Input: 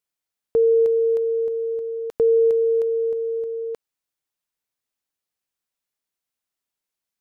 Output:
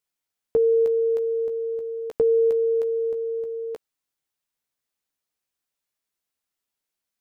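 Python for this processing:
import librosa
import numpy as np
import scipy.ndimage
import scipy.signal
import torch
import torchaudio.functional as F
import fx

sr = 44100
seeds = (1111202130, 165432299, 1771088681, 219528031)

y = fx.doubler(x, sr, ms=14.0, db=-7.5)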